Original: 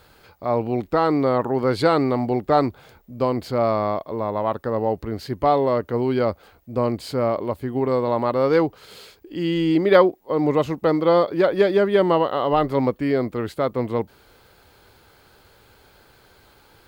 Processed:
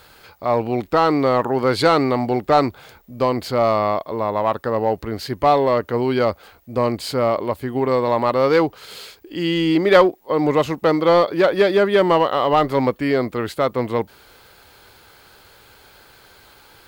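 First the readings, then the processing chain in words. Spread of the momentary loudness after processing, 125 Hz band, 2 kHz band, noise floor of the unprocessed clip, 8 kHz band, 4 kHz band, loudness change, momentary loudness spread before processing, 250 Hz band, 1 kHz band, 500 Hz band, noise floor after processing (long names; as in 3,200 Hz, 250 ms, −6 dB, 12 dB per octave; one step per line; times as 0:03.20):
9 LU, +0.5 dB, +5.5 dB, −55 dBFS, can't be measured, +6.5 dB, +2.5 dB, 9 LU, +1.0 dB, +4.0 dB, +2.0 dB, −50 dBFS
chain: tilt shelving filter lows −3.5 dB, about 710 Hz
in parallel at −5 dB: hard clipping −15.5 dBFS, distortion −12 dB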